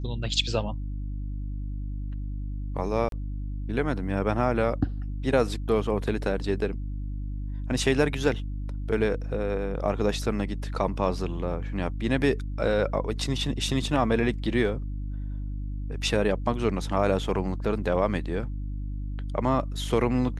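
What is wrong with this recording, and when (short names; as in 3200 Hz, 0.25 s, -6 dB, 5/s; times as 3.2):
hum 50 Hz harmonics 6 -32 dBFS
3.09–3.12 gap 32 ms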